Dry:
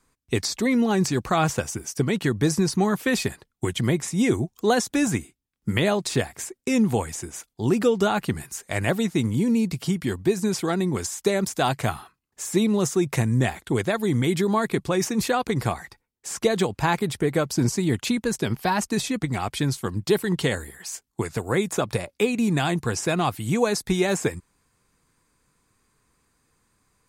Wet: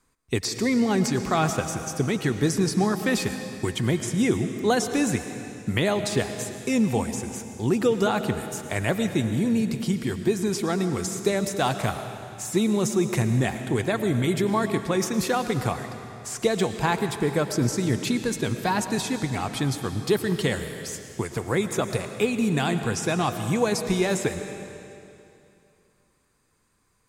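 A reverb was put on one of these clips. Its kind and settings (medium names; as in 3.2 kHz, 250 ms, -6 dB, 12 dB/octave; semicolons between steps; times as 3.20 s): algorithmic reverb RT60 2.7 s, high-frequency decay 0.95×, pre-delay 70 ms, DRR 8 dB; trim -1.5 dB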